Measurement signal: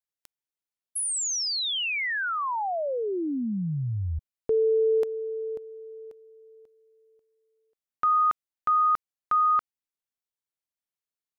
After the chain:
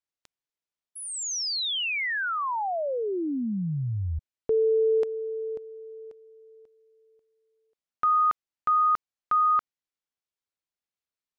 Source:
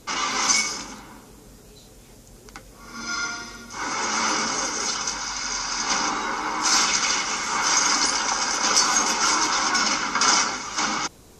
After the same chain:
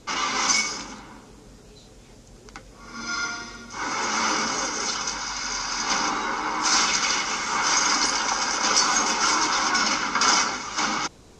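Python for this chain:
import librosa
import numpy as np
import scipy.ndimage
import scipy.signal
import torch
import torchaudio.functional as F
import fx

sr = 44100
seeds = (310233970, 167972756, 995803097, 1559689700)

y = scipy.signal.sosfilt(scipy.signal.butter(2, 6800.0, 'lowpass', fs=sr, output='sos'), x)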